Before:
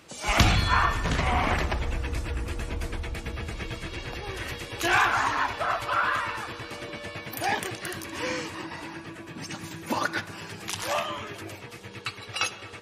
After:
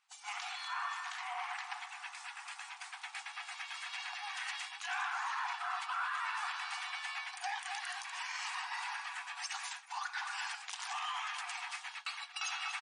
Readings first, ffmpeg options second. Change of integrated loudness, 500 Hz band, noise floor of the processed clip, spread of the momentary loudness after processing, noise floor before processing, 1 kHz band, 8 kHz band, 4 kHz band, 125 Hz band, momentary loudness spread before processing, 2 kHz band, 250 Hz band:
-11.0 dB, under -25 dB, -53 dBFS, 7 LU, -44 dBFS, -10.5 dB, -8.5 dB, -8.5 dB, under -40 dB, 15 LU, -9.5 dB, under -40 dB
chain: -filter_complex "[0:a]asplit=2[s0][s1];[s1]adelay=245,lowpass=f=3400:p=1,volume=0.188,asplit=2[s2][s3];[s3]adelay=245,lowpass=f=3400:p=1,volume=0.47,asplit=2[s4][s5];[s5]adelay=245,lowpass=f=3400:p=1,volume=0.47,asplit=2[s6][s7];[s7]adelay=245,lowpass=f=3400:p=1,volume=0.47[s8];[s2][s4][s6][s8]amix=inputs=4:normalize=0[s9];[s0][s9]amix=inputs=2:normalize=0,acrusher=bits=6:mode=log:mix=0:aa=0.000001,areverse,acompressor=threshold=0.0126:ratio=8,areverse,agate=range=0.0224:threshold=0.01:ratio=3:detection=peak,alimiter=level_in=6.31:limit=0.0631:level=0:latency=1:release=189,volume=0.158,afftfilt=real='re*between(b*sr/4096,700,9900)':imag='im*between(b*sr/4096,700,9900)':win_size=4096:overlap=0.75,volume=3.98"

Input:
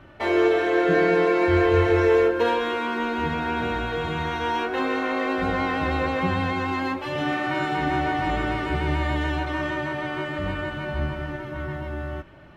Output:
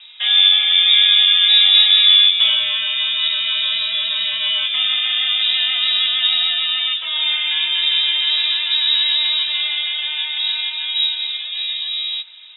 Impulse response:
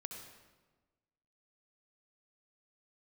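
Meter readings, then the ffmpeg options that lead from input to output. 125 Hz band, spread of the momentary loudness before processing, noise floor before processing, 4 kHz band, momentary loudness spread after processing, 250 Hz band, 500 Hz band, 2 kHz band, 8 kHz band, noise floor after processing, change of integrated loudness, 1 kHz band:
under -30 dB, 10 LU, -35 dBFS, +27.0 dB, 11 LU, under -30 dB, under -25 dB, +3.5 dB, no reading, -28 dBFS, +10.0 dB, -12.5 dB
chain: -af "highshelf=f=2200:g=-11.5,lowpass=f=3300:t=q:w=0.5098,lowpass=f=3300:t=q:w=0.6013,lowpass=f=3300:t=q:w=0.9,lowpass=f=3300:t=q:w=2.563,afreqshift=-3900,volume=2.37"

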